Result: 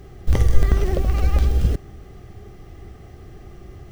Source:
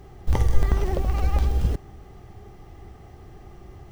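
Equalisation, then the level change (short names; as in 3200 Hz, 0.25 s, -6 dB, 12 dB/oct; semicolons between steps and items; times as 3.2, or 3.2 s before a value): bell 900 Hz -12.5 dB 0.34 oct; +4.0 dB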